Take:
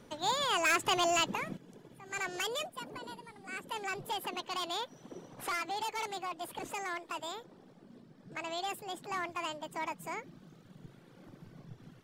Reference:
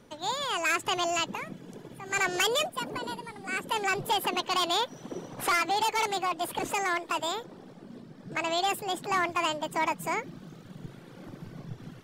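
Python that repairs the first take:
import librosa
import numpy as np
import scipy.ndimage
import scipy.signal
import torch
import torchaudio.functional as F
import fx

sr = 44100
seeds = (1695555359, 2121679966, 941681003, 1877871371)

y = fx.fix_declip(x, sr, threshold_db=-23.5)
y = fx.fix_level(y, sr, at_s=1.57, step_db=9.5)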